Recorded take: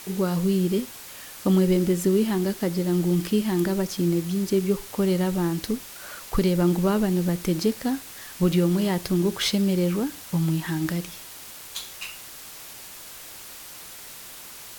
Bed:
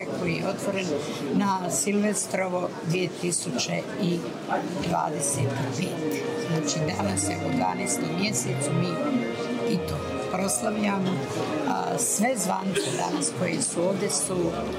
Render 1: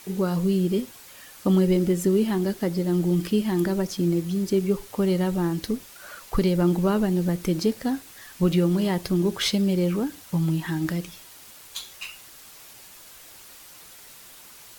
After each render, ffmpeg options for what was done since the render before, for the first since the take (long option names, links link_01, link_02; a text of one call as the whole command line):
ffmpeg -i in.wav -af "afftdn=noise_reduction=6:noise_floor=-42" out.wav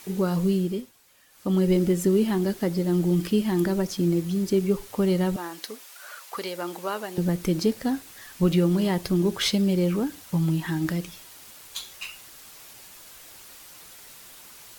ffmpeg -i in.wav -filter_complex "[0:a]asettb=1/sr,asplit=3[link_01][link_02][link_03];[link_01]atrim=end=5.364[link_04];[link_02]atrim=start=5.36:end=7.18,asetpts=PTS-STARTPTS,afade=type=in:duration=0.004:curve=qsin,afade=type=out:start_time=1.816:duration=0.004:curve=qsin,highpass=650[link_05];[link_03]atrim=start=7.176[link_06];[link_04][link_05]acrossfade=duration=0.004:curve1=hsin:curve2=qsin[link_07];[link_07][link_06]acrossfade=duration=0.004:curve1=qsin:curve2=hsin,asplit=3[link_08][link_09][link_10];[link_08]atrim=end=0.92,asetpts=PTS-STARTPTS,afade=type=out:start_time=0.49:duration=0.43:silence=0.223872[link_11];[link_09]atrim=start=0.92:end=1.29,asetpts=PTS-STARTPTS,volume=-13dB[link_12];[link_10]atrim=start=1.29,asetpts=PTS-STARTPTS,afade=type=in:duration=0.43:silence=0.223872[link_13];[link_11][link_12][link_13]concat=n=3:v=0:a=1" out.wav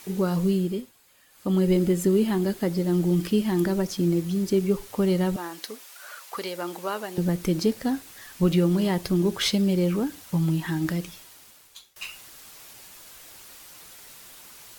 ffmpeg -i in.wav -filter_complex "[0:a]asettb=1/sr,asplit=3[link_01][link_02][link_03];[link_01]atrim=end=0.514[link_04];[link_02]atrim=start=0.51:end=2.68,asetpts=PTS-STARTPTS,afade=type=in:duration=0.004:curve=qsin,afade=type=out:start_time=2.166:duration=0.004:curve=qsin,bandreject=frequency=5700:width=12[link_05];[link_03]atrim=start=2.676[link_06];[link_04][link_05]acrossfade=duration=0.004:curve1=hsin:curve2=qsin[link_07];[link_07][link_06]acrossfade=duration=0.004:curve1=qsin:curve2=hsin,asplit=2[link_08][link_09];[link_08]atrim=end=11.96,asetpts=PTS-STARTPTS,afade=type=out:start_time=11.08:duration=0.88:silence=0.0668344[link_10];[link_09]atrim=start=11.96,asetpts=PTS-STARTPTS,afade=type=in:duration=0.004:curve=hsin:silence=0.0668344[link_11];[link_10][link_11]concat=n=2:v=0:a=1" out.wav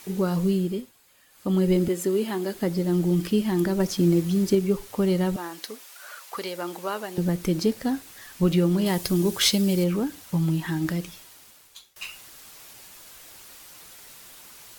ffmpeg -i in.wav -filter_complex "[0:a]asettb=1/sr,asplit=3[link_01][link_02][link_03];[link_01]atrim=end=1.884[link_04];[link_02]atrim=start=1.88:end=2.55,asetpts=PTS-STARTPTS,afade=type=in:duration=0.004:curve=qsin,afade=type=out:start_time=0.666:duration=0.004:curve=qsin,highpass=300[link_05];[link_03]atrim=start=2.546[link_06];[link_04][link_05]acrossfade=duration=0.004:curve1=hsin:curve2=qsin[link_07];[link_07][link_06]acrossfade=duration=0.004:curve1=qsin:curve2=hsin,asettb=1/sr,asplit=3[link_08][link_09][link_10];[link_08]atrim=end=8.864[link_11];[link_09]atrim=start=8.86:end=9.84,asetpts=PTS-STARTPTS,afade=type=in:duration=0.004:curve=qsin,afade=type=out:start_time=0.976:duration=0.004:curve=qsin,highshelf=frequency=4400:gain=9.5[link_12];[link_10]atrim=start=9.836[link_13];[link_11][link_12]acrossfade=duration=0.004:curve1=hsin:curve2=qsin[link_14];[link_14][link_13]acrossfade=duration=0.004:curve1=qsin:curve2=hsin,asplit=3[link_15][link_16][link_17];[link_15]atrim=end=3.802[link_18];[link_16]atrim=start=3.798:end=4.552,asetpts=PTS-STARTPTS,volume=3dB[link_19];[link_17]atrim=start=4.548[link_20];[link_18][link_19]acrossfade=duration=0.004:curve1=hsin:curve2=hsin[link_21];[link_21][link_20]acrossfade=duration=0.004:curve1=hsin:curve2=hsin" out.wav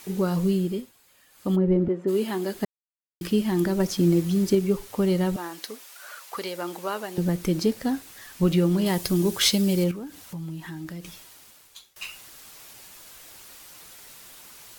ffmpeg -i in.wav -filter_complex "[0:a]asplit=3[link_01][link_02][link_03];[link_01]afade=type=out:start_time=1.55:duration=0.02[link_04];[link_02]lowpass=1200,afade=type=in:start_time=1.55:duration=0.02,afade=type=out:start_time=2.07:duration=0.02[link_05];[link_03]afade=type=in:start_time=2.07:duration=0.02[link_06];[link_04][link_05][link_06]amix=inputs=3:normalize=0,asettb=1/sr,asplit=3[link_07][link_08][link_09];[link_07]atrim=end=9.914[link_10];[link_08]atrim=start=9.91:end=11.05,asetpts=PTS-STARTPTS,afade=type=in:duration=0.004:curve=qsin,afade=type=out:start_time=1.136:duration=0.004:curve=qsin,acompressor=threshold=-41dB:ratio=2:attack=3.2:release=140:knee=1:detection=peak[link_11];[link_09]atrim=start=11.046[link_12];[link_10][link_11]acrossfade=duration=0.004:curve1=hsin:curve2=qsin[link_13];[link_13][link_12]acrossfade=duration=0.004:curve1=qsin:curve2=hsin,asplit=3[link_14][link_15][link_16];[link_14]atrim=end=2.65,asetpts=PTS-STARTPTS,afade=type=out:start_time=2.646:duration=0.004:curve=hsin[link_17];[link_15]atrim=start=2.65:end=3.21,asetpts=PTS-STARTPTS,volume=0[link_18];[link_16]atrim=start=3.21,asetpts=PTS-STARTPTS,afade=type=in:duration=0.004:curve=hsin[link_19];[link_17][link_18][link_19]concat=n=3:v=0:a=1" out.wav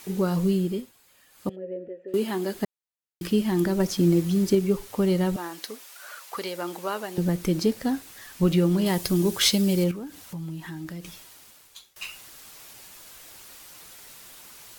ffmpeg -i in.wav -filter_complex "[0:a]asettb=1/sr,asplit=3[link_01][link_02][link_03];[link_01]atrim=end=1.494[link_04];[link_02]atrim=start=1.49:end=2.14,asetpts=PTS-STARTPTS,afade=type=in:duration=0.004:curve=qsin,afade=type=out:start_time=0.646:duration=0.004:curve=qsin,asplit=3[link_05][link_06][link_07];[link_05]bandpass=frequency=530:width_type=q:width=8,volume=0dB[link_08];[link_06]bandpass=frequency=1840:width_type=q:width=8,volume=-6dB[link_09];[link_07]bandpass=frequency=2480:width_type=q:width=8,volume=-9dB[link_10];[link_08][link_09][link_10]amix=inputs=3:normalize=0[link_11];[link_03]atrim=start=2.136[link_12];[link_04][link_11]acrossfade=duration=0.004:curve1=hsin:curve2=qsin[link_13];[link_13][link_12]acrossfade=duration=0.004:curve1=qsin:curve2=hsin" out.wav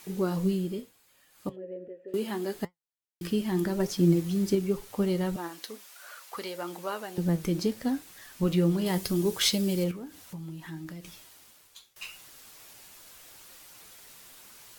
ffmpeg -i in.wav -af "flanger=delay=5.4:depth=7.5:regen=72:speed=0.74:shape=triangular" out.wav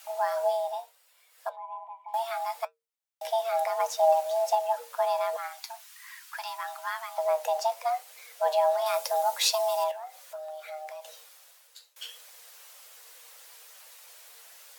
ffmpeg -i in.wav -af "afreqshift=460" out.wav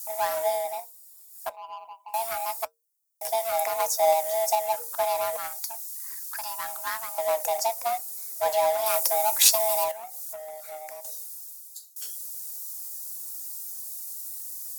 ffmpeg -i in.wav -filter_complex "[0:a]acrossover=split=4700[link_01][link_02];[link_01]adynamicsmooth=sensitivity=4.5:basefreq=760[link_03];[link_03][link_02]amix=inputs=2:normalize=0,crystalizer=i=3.5:c=0" out.wav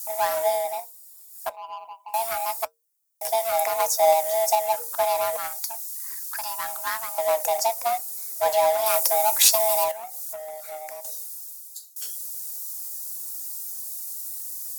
ffmpeg -i in.wav -af "volume=3dB,alimiter=limit=-3dB:level=0:latency=1" out.wav